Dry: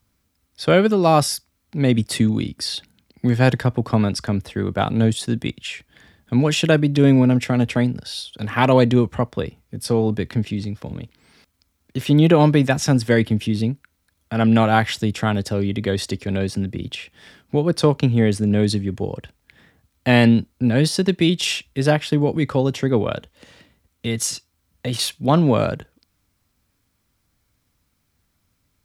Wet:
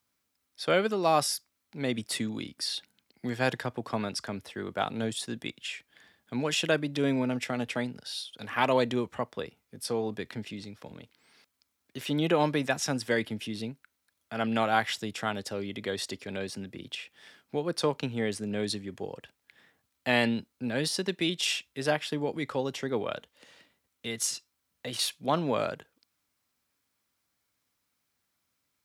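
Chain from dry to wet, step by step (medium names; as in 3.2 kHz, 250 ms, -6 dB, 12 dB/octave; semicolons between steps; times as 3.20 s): high-pass 550 Hz 6 dB/octave; trim -6.5 dB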